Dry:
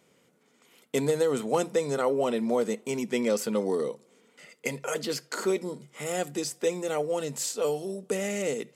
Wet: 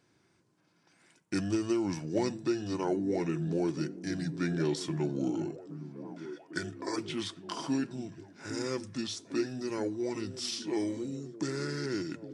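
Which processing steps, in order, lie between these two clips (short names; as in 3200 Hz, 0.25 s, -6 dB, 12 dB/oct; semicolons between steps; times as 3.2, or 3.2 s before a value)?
delay with a stepping band-pass 0.575 s, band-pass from 270 Hz, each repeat 0.7 oct, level -8 dB; varispeed -29%; gain -5 dB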